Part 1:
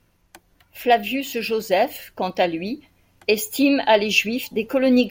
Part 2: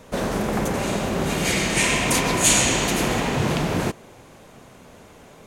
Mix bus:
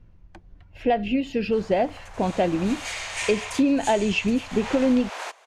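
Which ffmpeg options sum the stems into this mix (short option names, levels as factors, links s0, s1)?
-filter_complex "[0:a]aemphasis=mode=reproduction:type=riaa,volume=0.75[s0];[1:a]highpass=f=680:w=0.5412,highpass=f=680:w=1.3066,adelay=1400,volume=1.78,afade=t=in:st=2.1:d=0.33:silence=0.334965,afade=t=out:st=3.39:d=0.28:silence=0.398107,afade=t=in:st=4.48:d=0.26:silence=0.237137[s1];[s0][s1]amix=inputs=2:normalize=0,lowpass=7900,acompressor=threshold=0.141:ratio=6"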